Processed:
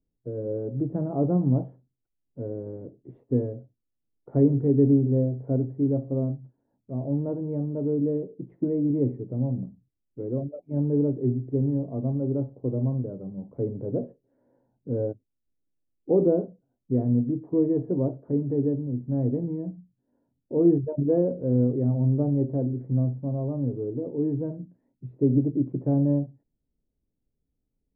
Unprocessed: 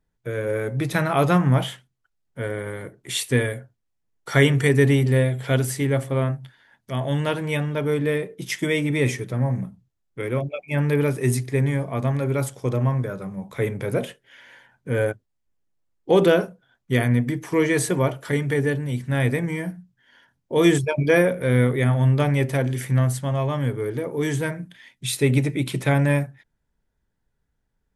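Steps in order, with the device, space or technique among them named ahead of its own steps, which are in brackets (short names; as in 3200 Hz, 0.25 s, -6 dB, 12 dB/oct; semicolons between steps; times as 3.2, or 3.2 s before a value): under water (LPF 620 Hz 24 dB/oct; bell 280 Hz +8 dB 0.53 oct); gain -5.5 dB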